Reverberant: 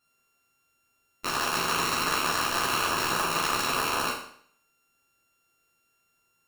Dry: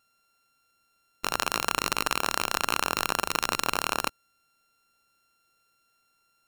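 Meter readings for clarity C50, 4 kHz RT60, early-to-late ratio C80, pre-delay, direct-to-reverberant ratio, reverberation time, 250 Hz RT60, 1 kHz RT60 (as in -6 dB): 3.5 dB, 0.60 s, 8.0 dB, 10 ms, -8.0 dB, 0.60 s, 0.60 s, 0.60 s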